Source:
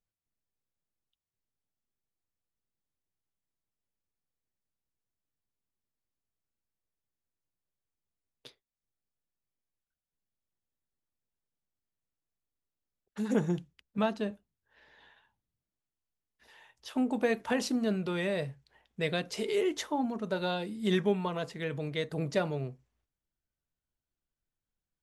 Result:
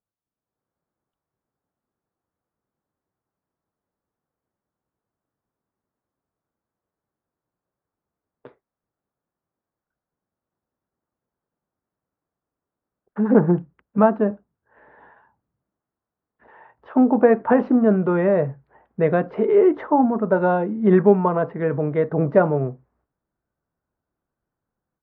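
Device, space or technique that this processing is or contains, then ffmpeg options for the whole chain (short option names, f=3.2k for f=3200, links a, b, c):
action camera in a waterproof case: -af "highpass=f=160:p=1,lowpass=f=1.4k:w=0.5412,lowpass=f=1.4k:w=1.3066,dynaudnorm=f=320:g=3:m=11dB,volume=4dB" -ar 22050 -c:a aac -b:a 96k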